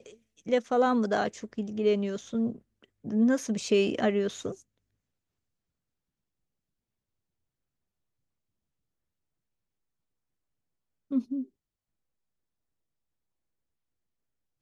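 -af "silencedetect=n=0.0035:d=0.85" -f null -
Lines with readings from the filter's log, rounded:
silence_start: 4.61
silence_end: 11.11 | silence_duration: 6.49
silence_start: 11.46
silence_end: 14.61 | silence_duration: 3.15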